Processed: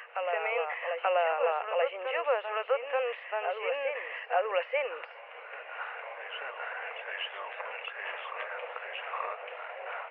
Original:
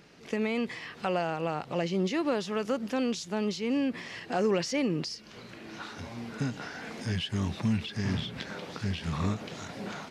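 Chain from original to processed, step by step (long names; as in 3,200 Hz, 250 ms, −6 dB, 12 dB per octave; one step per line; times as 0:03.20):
Chebyshev band-pass filter 490–2,800 Hz, order 5
backwards echo 883 ms −5.5 dB
level +4 dB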